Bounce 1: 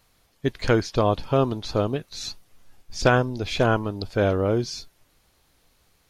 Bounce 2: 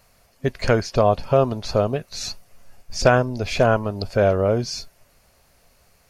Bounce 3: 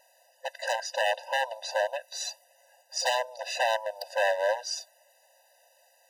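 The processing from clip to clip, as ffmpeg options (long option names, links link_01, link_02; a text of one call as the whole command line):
ffmpeg -i in.wav -filter_complex "[0:a]superequalizer=6b=0.501:8b=1.78:13b=0.501,asplit=2[link_01][link_02];[link_02]acompressor=threshold=-28dB:ratio=6,volume=-1.5dB[link_03];[link_01][link_03]amix=inputs=2:normalize=0" out.wav
ffmpeg -i in.wav -af "highpass=110,aeval=exprs='0.15*(abs(mod(val(0)/0.15+3,4)-2)-1)':channel_layout=same,afftfilt=real='re*eq(mod(floor(b*sr/1024/510),2),1)':imag='im*eq(mod(floor(b*sr/1024/510),2),1)':win_size=1024:overlap=0.75" out.wav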